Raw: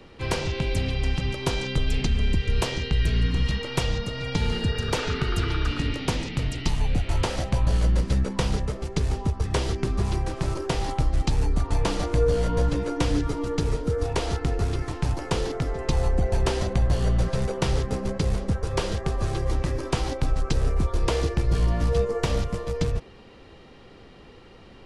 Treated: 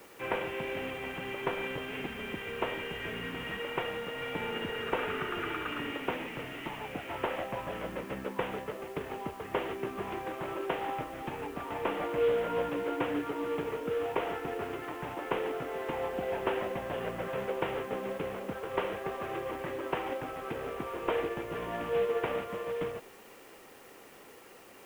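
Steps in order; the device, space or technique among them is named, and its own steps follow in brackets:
army field radio (band-pass filter 360–3,200 Hz; variable-slope delta modulation 16 kbit/s; white noise bed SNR 25 dB)
level −1.5 dB

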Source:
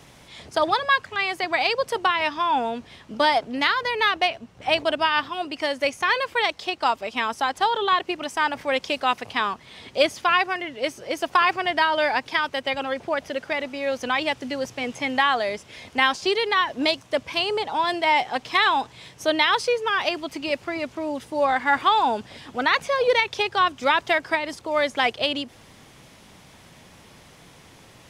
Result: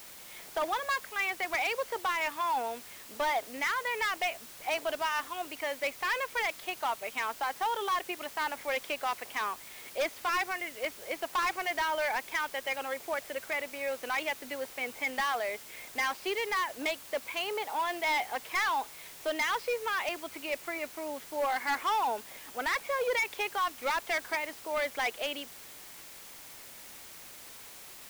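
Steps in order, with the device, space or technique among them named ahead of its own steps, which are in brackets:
drive-through speaker (band-pass filter 400–2,900 Hz; parametric band 2,200 Hz +6 dB 0.35 octaves; hard clipping −18 dBFS, distortion −10 dB; white noise bed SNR 15 dB)
level −7.5 dB

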